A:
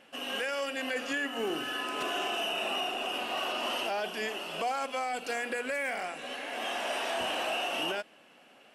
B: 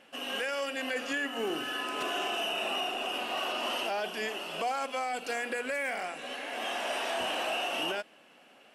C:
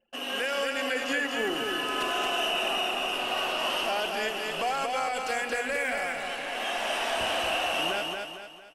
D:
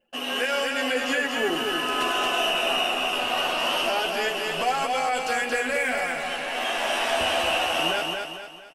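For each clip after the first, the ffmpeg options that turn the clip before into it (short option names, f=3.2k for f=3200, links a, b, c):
-af "equalizer=f=82:w=0.96:g=-3.5"
-af "asubboost=boost=5:cutoff=110,anlmdn=0.00631,aecho=1:1:227|454|681|908|1135:0.631|0.265|0.111|0.0467|0.0196,volume=3dB"
-filter_complex "[0:a]asplit=2[a][b];[b]adelay=12,volume=-4.5dB[c];[a][c]amix=inputs=2:normalize=0,volume=3dB"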